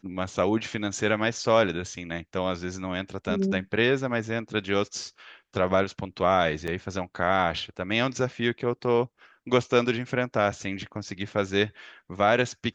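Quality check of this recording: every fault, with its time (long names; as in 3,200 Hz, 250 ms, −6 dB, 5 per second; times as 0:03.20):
0:06.67–0:06.68: drop-out 6.9 ms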